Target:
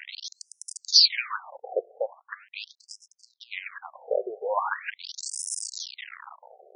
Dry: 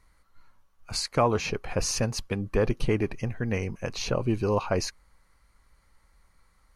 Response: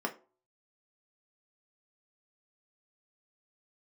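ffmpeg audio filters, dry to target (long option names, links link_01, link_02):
-filter_complex "[0:a]aeval=exprs='val(0)+0.5*0.0237*sgn(val(0))':channel_layout=same,asettb=1/sr,asplit=3[link_01][link_02][link_03];[link_01]atrim=end=1.504[link_04];[link_02]atrim=start=1.5:end=3.66,asetpts=PTS-STARTPTS,afade=type=in:duration=0.004:curve=qsin,afade=type=out:start_time=2.156:duration=0.004:curve=qsin,adynamicsmooth=sensitivity=1.5:basefreq=650[link_05];[link_03]atrim=start=3.656[link_06];[link_04][link_05]acrossfade=duration=0.004:curve1=hsin:curve2=qsin[link_07];[link_07][link_06]acrossfade=duration=0.004:curve1=qsin:curve2=hsin,crystalizer=i=5.5:c=0,afftfilt=real='re*between(b*sr/1024,530*pow(7300/530,0.5+0.5*sin(2*PI*0.41*pts/sr))/1.41,530*pow(7300/530,0.5+0.5*sin(2*PI*0.41*pts/sr))*1.41)':imag='im*between(b*sr/1024,530*pow(7300/530,0.5+0.5*sin(2*PI*0.41*pts/sr))/1.41,530*pow(7300/530,0.5+0.5*sin(2*PI*0.41*pts/sr))*1.41)':win_size=1024:overlap=0.75,volume=2dB"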